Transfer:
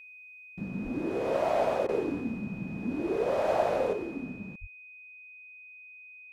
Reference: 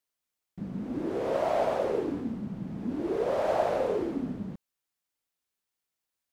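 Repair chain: band-stop 2.5 kHz, Q 30; de-plosive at 0.83/4.60 s; interpolate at 1.87 s, 16 ms; trim 0 dB, from 3.93 s +5 dB

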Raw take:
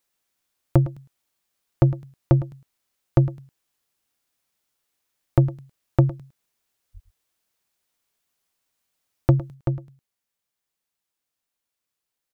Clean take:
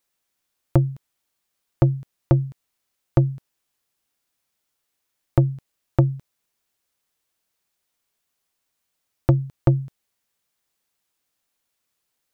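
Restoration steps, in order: 6.93–7.05 s: high-pass 140 Hz 24 dB/octave; inverse comb 108 ms -15.5 dB; 9.54 s: gain correction +7 dB

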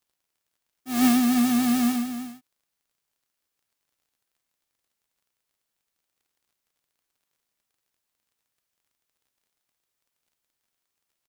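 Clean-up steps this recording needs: de-click; inverse comb 309 ms -10.5 dB

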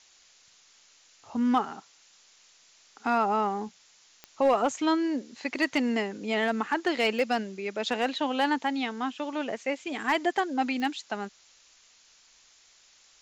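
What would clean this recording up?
clip repair -15.5 dBFS; de-click; noise print and reduce 14 dB

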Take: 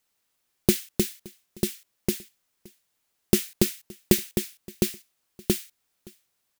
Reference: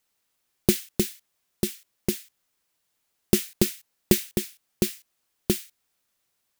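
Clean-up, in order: inverse comb 570 ms -24 dB

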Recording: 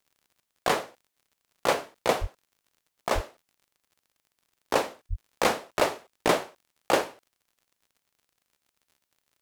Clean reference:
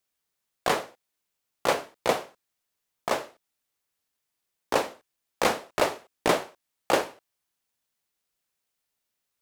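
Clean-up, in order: de-click; 2.20–2.32 s: high-pass 140 Hz 24 dB/octave; 3.14–3.26 s: high-pass 140 Hz 24 dB/octave; 5.09–5.21 s: high-pass 140 Hz 24 dB/octave

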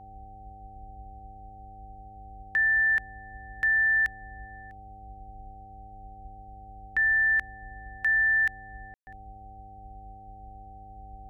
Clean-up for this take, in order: de-hum 101.8 Hz, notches 6; band-stop 770 Hz, Q 30; room tone fill 8.94–9.07 s; noise print and reduce 26 dB

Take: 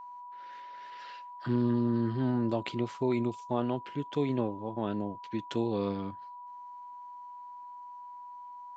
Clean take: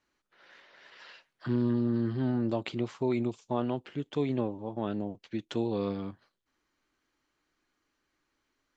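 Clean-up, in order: band-stop 980 Hz, Q 30

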